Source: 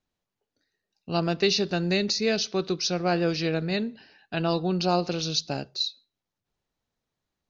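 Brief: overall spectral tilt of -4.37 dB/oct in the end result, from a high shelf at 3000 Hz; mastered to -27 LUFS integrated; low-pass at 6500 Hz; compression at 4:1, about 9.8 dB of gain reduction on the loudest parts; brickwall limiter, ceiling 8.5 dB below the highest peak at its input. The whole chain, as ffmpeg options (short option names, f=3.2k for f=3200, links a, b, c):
-af "lowpass=6.5k,highshelf=f=3k:g=5,acompressor=threshold=-30dB:ratio=4,volume=8.5dB,alimiter=limit=-17dB:level=0:latency=1"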